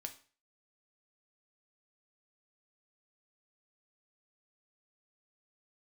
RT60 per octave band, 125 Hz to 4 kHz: 0.45, 0.40, 0.40, 0.40, 0.40, 0.40 s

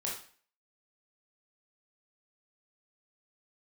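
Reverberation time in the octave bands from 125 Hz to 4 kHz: 0.45, 0.45, 0.45, 0.45, 0.45, 0.45 s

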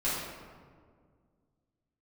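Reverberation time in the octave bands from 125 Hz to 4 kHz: 2.6, 2.6, 2.1, 1.7, 1.3, 0.90 s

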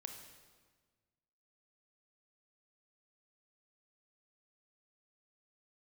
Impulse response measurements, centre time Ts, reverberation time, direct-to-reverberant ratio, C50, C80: 34 ms, 1.5 s, 4.0 dB, 6.0 dB, 7.5 dB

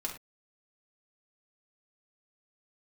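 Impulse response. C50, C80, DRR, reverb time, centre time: 7.5 dB, 12.5 dB, -2.0 dB, not exponential, 21 ms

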